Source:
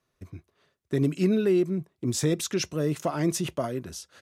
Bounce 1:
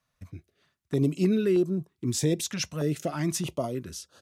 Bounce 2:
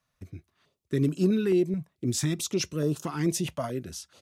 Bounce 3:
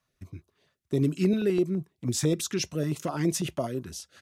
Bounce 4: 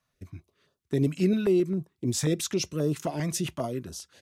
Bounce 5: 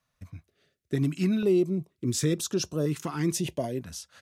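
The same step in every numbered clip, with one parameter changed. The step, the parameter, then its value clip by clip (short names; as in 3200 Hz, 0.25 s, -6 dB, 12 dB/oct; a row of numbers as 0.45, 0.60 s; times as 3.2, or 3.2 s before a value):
stepped notch, rate: 3.2, 4.6, 12, 7.5, 2.1 Hz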